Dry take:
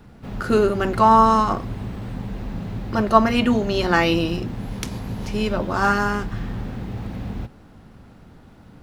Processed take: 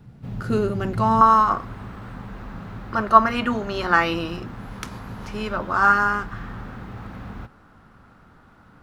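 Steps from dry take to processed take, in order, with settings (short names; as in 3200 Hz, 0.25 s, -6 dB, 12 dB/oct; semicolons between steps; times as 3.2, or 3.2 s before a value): bell 130 Hz +13 dB 1.1 oct, from 1.21 s 1300 Hz; gain -7 dB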